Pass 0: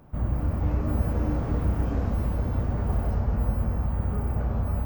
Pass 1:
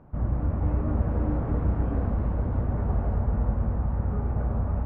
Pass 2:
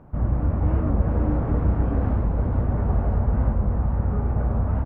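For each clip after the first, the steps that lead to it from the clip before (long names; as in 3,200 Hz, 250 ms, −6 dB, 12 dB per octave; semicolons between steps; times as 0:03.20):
low-pass filter 1,700 Hz 12 dB per octave
wow of a warped record 45 rpm, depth 160 cents; level +4 dB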